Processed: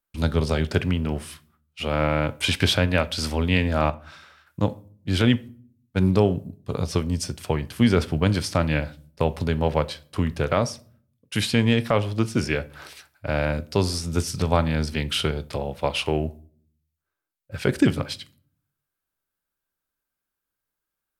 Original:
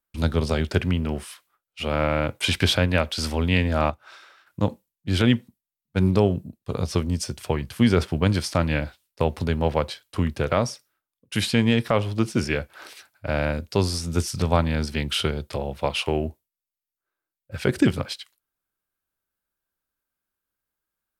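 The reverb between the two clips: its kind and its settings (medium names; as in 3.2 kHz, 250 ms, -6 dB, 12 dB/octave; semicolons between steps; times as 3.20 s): simulated room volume 520 m³, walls furnished, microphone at 0.32 m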